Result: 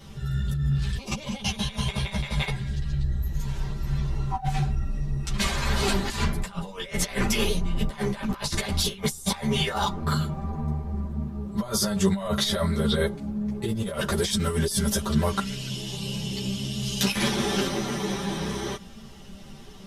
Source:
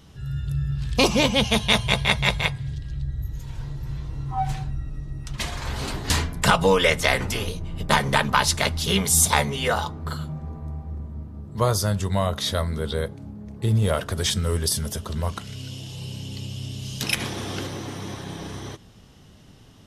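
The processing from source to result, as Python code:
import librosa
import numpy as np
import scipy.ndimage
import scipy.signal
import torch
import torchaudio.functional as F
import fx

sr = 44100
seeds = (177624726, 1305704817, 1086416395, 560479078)

y = x + 0.85 * np.pad(x, (int(5.1 * sr / 1000.0), 0))[:len(x)]
y = fx.over_compress(y, sr, threshold_db=-25.0, ratio=-0.5)
y = fx.dmg_noise_colour(y, sr, seeds[0], colour='brown', level_db=-52.0)
y = fx.ensemble(y, sr)
y = y * librosa.db_to_amplitude(3.0)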